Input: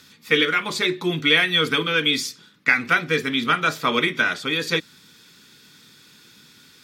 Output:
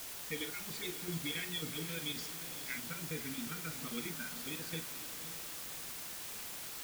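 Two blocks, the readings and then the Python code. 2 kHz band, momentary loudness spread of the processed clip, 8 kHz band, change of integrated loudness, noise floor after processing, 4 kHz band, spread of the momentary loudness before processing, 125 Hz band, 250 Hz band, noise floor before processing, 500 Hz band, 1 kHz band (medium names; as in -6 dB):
-24.0 dB, 4 LU, -4.5 dB, -19.5 dB, -45 dBFS, -19.5 dB, 7 LU, -13.0 dB, -17.0 dB, -52 dBFS, -22.0 dB, -24.5 dB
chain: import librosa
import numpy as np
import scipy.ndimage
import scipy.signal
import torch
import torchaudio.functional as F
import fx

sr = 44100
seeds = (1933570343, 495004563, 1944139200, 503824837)

y = fx.spec_gate(x, sr, threshold_db=-15, keep='strong')
y = fx.tone_stack(y, sr, knobs='10-0-1')
y = fx.chopper(y, sr, hz=7.4, depth_pct=65, duty_pct=70)
y = fx.quant_dither(y, sr, seeds[0], bits=8, dither='triangular')
y = fx.doubler(y, sr, ms=42.0, db=-11.0)
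y = fx.echo_diffused(y, sr, ms=505, feedback_pct=47, wet_db=-11.0)
y = y * librosa.db_to_amplitude(2.5)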